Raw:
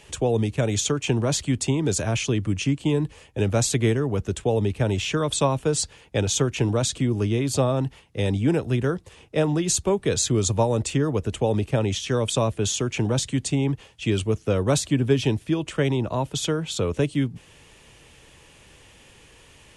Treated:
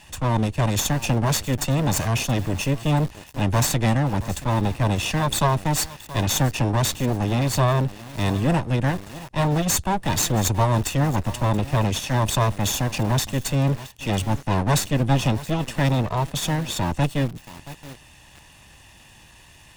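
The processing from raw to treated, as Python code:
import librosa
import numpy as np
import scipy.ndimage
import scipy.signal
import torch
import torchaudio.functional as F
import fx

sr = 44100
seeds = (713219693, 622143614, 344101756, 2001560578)

y = fx.lower_of_two(x, sr, delay_ms=1.1)
y = fx.transient(y, sr, attack_db=-4, sustain_db=0)
y = fx.echo_crushed(y, sr, ms=676, feedback_pct=35, bits=5, wet_db=-14.5)
y = y * 10.0 ** (3.5 / 20.0)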